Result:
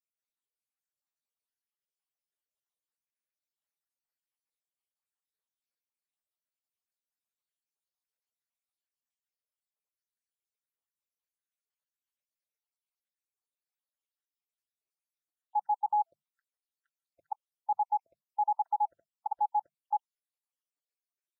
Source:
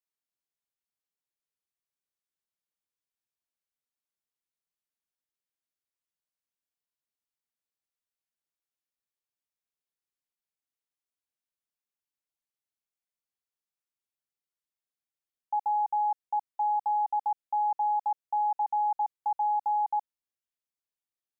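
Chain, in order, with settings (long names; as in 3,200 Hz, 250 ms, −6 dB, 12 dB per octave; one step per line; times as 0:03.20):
time-frequency cells dropped at random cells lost 74%
mains-hum notches 50/100/150/200 Hz
level +1 dB
Ogg Vorbis 64 kbit/s 48,000 Hz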